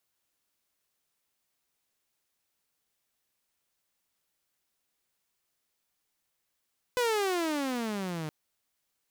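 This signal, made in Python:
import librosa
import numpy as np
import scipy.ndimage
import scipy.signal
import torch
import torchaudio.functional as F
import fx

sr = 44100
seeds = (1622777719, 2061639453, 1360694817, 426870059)

y = fx.riser_tone(sr, length_s=1.32, level_db=-22.0, wave='saw', hz=505.0, rise_st=-21.0, swell_db=-9)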